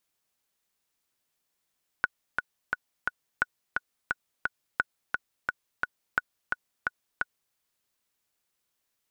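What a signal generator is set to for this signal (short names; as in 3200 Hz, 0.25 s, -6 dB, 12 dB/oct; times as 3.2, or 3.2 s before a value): metronome 174 bpm, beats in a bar 4, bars 4, 1470 Hz, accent 3.5 dB -10 dBFS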